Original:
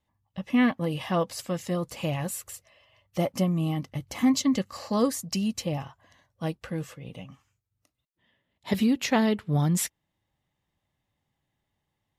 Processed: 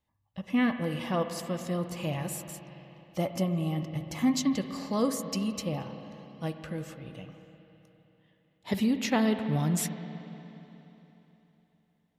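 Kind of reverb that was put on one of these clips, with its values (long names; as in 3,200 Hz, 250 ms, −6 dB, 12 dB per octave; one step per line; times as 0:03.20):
spring reverb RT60 3.5 s, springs 51/59 ms, chirp 30 ms, DRR 7.5 dB
level −3.5 dB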